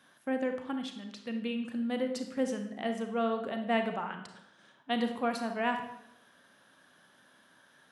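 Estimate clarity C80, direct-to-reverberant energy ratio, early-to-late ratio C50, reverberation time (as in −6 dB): 10.5 dB, 5.5 dB, 7.0 dB, 0.80 s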